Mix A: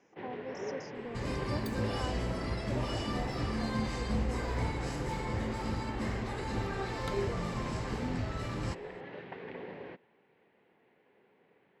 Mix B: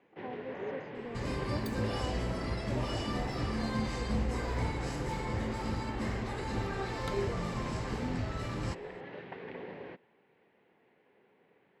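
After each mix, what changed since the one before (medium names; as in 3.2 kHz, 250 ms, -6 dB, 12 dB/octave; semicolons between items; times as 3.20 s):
speech: add boxcar filter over 16 samples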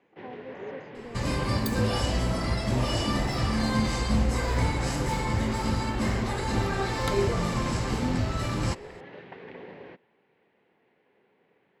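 second sound +8.0 dB; master: add treble shelf 6.5 kHz +7 dB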